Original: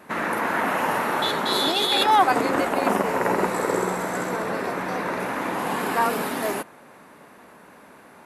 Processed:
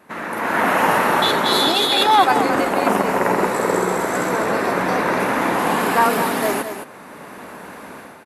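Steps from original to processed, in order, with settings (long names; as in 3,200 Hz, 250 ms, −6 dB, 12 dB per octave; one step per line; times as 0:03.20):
automatic gain control gain up to 15.5 dB
on a send: single-tap delay 216 ms −9 dB
on the sum: level −3.5 dB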